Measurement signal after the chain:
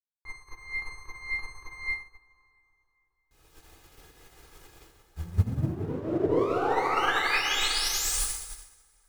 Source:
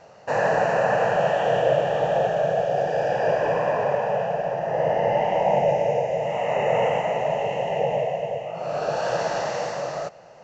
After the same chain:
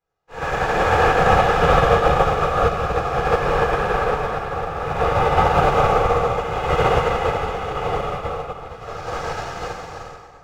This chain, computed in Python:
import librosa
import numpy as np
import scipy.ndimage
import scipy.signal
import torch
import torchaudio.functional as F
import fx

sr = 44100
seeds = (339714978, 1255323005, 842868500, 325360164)

y = fx.lower_of_two(x, sr, delay_ms=2.4)
y = fx.rev_plate(y, sr, seeds[0], rt60_s=3.9, hf_ratio=0.65, predelay_ms=0, drr_db=-9.5)
y = fx.upward_expand(y, sr, threshold_db=-34.0, expansion=2.5)